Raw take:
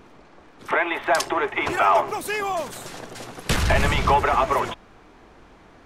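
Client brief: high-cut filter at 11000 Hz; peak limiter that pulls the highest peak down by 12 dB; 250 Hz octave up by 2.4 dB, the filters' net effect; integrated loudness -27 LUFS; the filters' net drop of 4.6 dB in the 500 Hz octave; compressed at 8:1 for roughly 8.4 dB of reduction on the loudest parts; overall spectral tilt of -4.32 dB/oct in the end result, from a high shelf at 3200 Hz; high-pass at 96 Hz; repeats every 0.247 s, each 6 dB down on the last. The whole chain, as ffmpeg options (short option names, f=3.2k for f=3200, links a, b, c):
-af "highpass=96,lowpass=11k,equalizer=f=250:t=o:g=7,equalizer=f=500:t=o:g=-8.5,highshelf=f=3.2k:g=-4.5,acompressor=threshold=-25dB:ratio=8,alimiter=level_in=2.5dB:limit=-24dB:level=0:latency=1,volume=-2.5dB,aecho=1:1:247|494|741|988|1235|1482:0.501|0.251|0.125|0.0626|0.0313|0.0157,volume=7.5dB"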